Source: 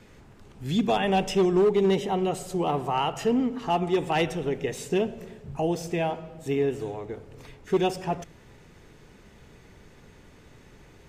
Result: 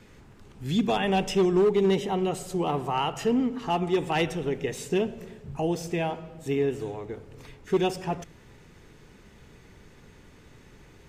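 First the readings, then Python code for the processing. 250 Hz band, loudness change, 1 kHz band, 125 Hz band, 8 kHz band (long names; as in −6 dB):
0.0 dB, −0.5 dB, −1.5 dB, 0.0 dB, 0.0 dB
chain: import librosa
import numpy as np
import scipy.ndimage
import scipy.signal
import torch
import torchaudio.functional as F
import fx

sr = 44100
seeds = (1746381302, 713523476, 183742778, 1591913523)

y = fx.peak_eq(x, sr, hz=650.0, db=-3.0, octaves=0.69)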